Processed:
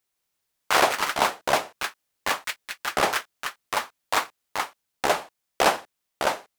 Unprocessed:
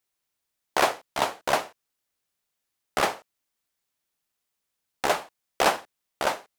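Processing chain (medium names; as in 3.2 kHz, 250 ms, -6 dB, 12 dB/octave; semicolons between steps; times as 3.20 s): ever faster or slower copies 164 ms, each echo +6 st, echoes 3; trim +1.5 dB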